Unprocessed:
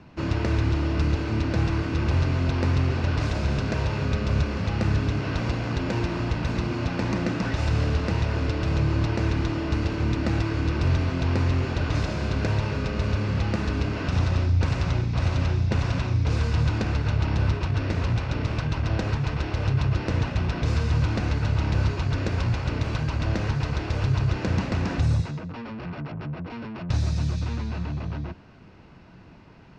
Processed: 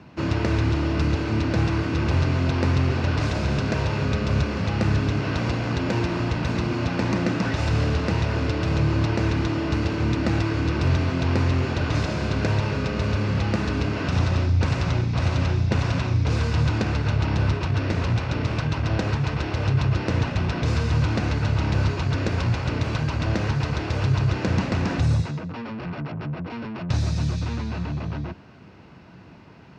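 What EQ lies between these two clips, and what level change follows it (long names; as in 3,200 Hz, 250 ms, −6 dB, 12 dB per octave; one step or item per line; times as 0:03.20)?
high-pass filter 78 Hz
+3.0 dB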